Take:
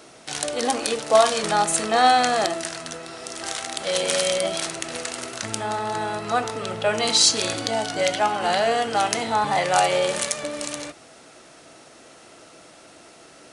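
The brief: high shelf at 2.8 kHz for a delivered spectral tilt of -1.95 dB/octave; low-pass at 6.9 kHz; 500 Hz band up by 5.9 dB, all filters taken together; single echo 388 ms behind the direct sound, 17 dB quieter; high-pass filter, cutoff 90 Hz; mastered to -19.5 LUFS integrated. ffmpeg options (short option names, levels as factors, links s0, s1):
-af "highpass=90,lowpass=6900,equalizer=f=500:t=o:g=7.5,highshelf=f=2800:g=3,aecho=1:1:388:0.141,volume=0.944"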